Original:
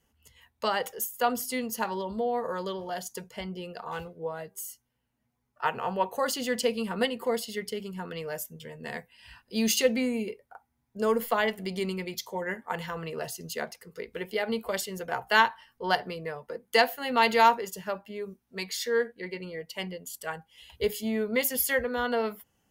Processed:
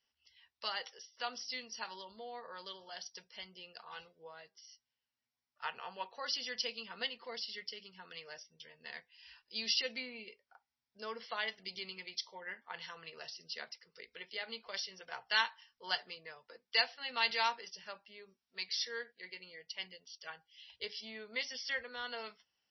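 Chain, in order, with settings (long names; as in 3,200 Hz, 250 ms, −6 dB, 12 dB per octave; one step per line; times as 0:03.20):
first-order pre-emphasis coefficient 0.97
level +3.5 dB
MP3 24 kbit/s 22,050 Hz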